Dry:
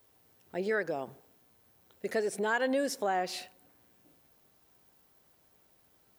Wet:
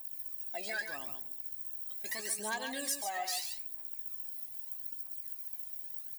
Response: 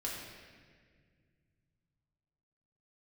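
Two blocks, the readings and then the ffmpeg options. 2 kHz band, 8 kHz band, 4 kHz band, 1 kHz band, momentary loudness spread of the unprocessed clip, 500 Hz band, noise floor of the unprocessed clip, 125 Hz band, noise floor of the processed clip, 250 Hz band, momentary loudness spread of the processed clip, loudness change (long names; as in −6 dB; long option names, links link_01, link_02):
−4.0 dB, +8.0 dB, +3.0 dB, −6.0 dB, 13 LU, −14.0 dB, −67 dBFS, can't be measured, −46 dBFS, −12.0 dB, 5 LU, −4.5 dB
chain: -filter_complex "[0:a]equalizer=frequency=460:width=2.8:gain=-12.5,aphaser=in_gain=1:out_gain=1:delay=1.6:decay=0.78:speed=0.79:type=triangular,asoftclip=type=tanh:threshold=-21.5dB,highpass=350,aemphasis=mode=production:type=75fm,asplit=2[link_01][link_02];[link_02]adelay=14,volume=-10.5dB[link_03];[link_01][link_03]amix=inputs=2:normalize=0,acompressor=threshold=-34dB:ratio=2.5,asuperstop=centerf=1400:order=8:qfactor=6.2,asplit=2[link_04][link_05];[link_05]aecho=0:1:139:0.447[link_06];[link_04][link_06]amix=inputs=2:normalize=0,volume=-2dB" -ar 48000 -c:a libopus -b:a 128k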